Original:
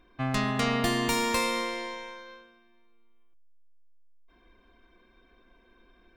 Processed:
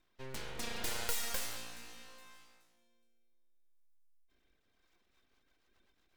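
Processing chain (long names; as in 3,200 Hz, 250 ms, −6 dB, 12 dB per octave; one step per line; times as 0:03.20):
first-order pre-emphasis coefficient 0.8
delay that swaps between a low-pass and a high-pass 210 ms, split 2,300 Hz, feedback 51%, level −12 dB
rotating-speaker cabinet horn 0.7 Hz, later 8 Hz, at 0:04.62
full-wave rectification
every ending faded ahead of time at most 120 dB per second
level +2 dB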